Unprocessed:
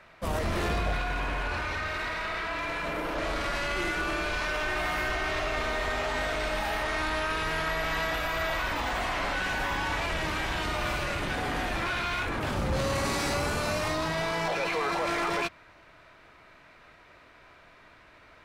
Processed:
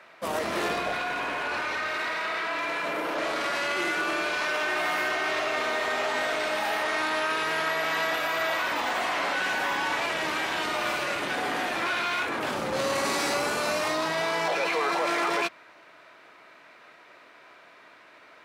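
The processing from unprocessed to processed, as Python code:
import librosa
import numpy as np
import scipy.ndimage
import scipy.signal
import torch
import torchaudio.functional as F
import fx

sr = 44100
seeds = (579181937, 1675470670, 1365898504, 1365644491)

y = scipy.signal.sosfilt(scipy.signal.butter(2, 280.0, 'highpass', fs=sr, output='sos'), x)
y = y * librosa.db_to_amplitude(3.0)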